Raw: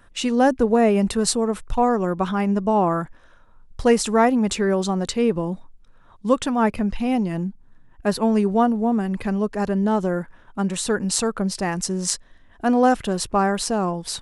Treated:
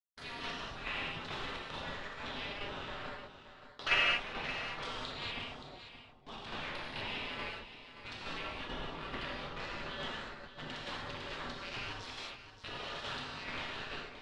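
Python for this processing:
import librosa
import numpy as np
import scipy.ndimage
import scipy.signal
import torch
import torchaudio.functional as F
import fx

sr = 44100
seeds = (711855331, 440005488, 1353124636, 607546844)

y = fx.spec_gate(x, sr, threshold_db=-25, keep='weak')
y = fx.peak_eq(y, sr, hz=150.0, db=4.0, octaves=2.4)
y = fx.level_steps(y, sr, step_db=12)
y = fx.backlash(y, sr, play_db=-42.5)
y = fx.rev_gated(y, sr, seeds[0], gate_ms=270, shape='flat', drr_db=-6.0)
y = fx.tremolo_shape(y, sr, shape='saw_down', hz=2.3, depth_pct=40)
y = y + 10.0 ** (-11.5 / 20.0) * np.pad(y, (int(574 * sr / 1000.0), 0))[:len(y)]
y = fx.envelope_lowpass(y, sr, base_hz=510.0, top_hz=4000.0, q=2.5, full_db=-15.5, direction='down')
y = y * librosa.db_to_amplitude(3.5)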